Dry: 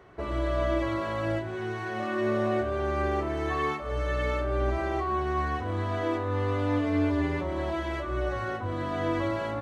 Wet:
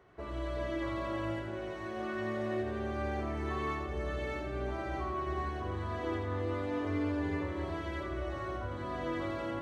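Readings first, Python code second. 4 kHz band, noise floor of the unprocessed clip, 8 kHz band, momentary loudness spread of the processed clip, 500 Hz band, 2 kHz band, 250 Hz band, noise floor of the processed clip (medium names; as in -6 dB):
-6.5 dB, -35 dBFS, no reading, 4 LU, -7.5 dB, -7.0 dB, -6.5 dB, -40 dBFS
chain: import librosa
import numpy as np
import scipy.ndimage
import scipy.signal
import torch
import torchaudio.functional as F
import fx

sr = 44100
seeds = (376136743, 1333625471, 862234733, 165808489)

y = fx.echo_split(x, sr, split_hz=720.0, low_ms=380, high_ms=85, feedback_pct=52, wet_db=-4)
y = y * librosa.db_to_amplitude(-8.5)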